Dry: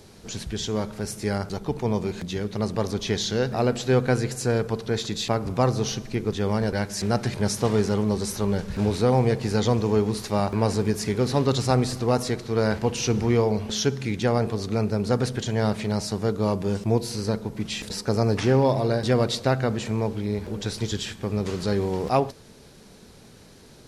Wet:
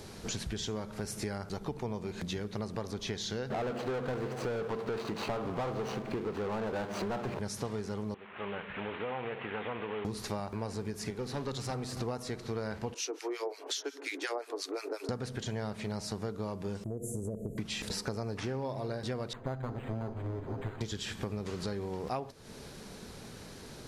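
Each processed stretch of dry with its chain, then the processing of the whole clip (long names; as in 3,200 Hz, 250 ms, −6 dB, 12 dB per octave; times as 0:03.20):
0:03.50–0:07.39: running median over 25 samples + mid-hump overdrive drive 27 dB, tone 2,800 Hz, clips at −9.5 dBFS
0:08.14–0:10.05: variable-slope delta modulation 16 kbit/s + high-pass filter 1,200 Hz 6 dB per octave + downward compressor 2 to 1, threshold −36 dBFS
0:11.10–0:11.97: high-pass filter 92 Hz + tube saturation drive 13 dB, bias 0.7
0:12.94–0:15.09: Chebyshev high-pass filter 270 Hz, order 10 + high-shelf EQ 4,000 Hz +7 dB + two-band tremolo in antiphase 5.6 Hz, depth 100%, crossover 1,300 Hz
0:16.84–0:17.58: Chebyshev band-stop filter 660–7,000 Hz, order 5 + downward compressor 5 to 1, threshold −27 dBFS
0:19.33–0:20.81: lower of the sound and its delayed copy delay 7.6 ms + head-to-tape spacing loss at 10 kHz 29 dB + linearly interpolated sample-rate reduction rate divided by 8×
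whole clip: downward compressor 12 to 1, threshold −35 dBFS; parametric band 1,300 Hz +2.5 dB 1.7 octaves; level +1.5 dB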